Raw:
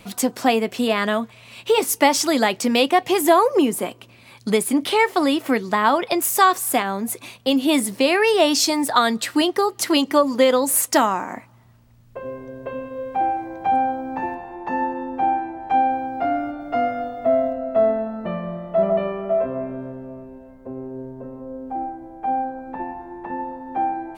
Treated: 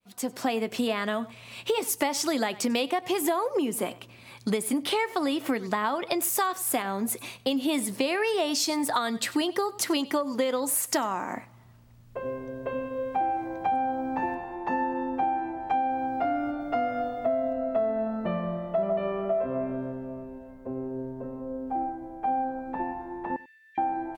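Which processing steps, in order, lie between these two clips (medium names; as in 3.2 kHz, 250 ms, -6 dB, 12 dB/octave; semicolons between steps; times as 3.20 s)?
fade-in on the opening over 0.62 s; 23.36–23.78 s: Chebyshev high-pass 1.7 kHz, order 10; delay 95 ms -21.5 dB; compression 6:1, threshold -22 dBFS, peak gain reduction 12 dB; trim -1.5 dB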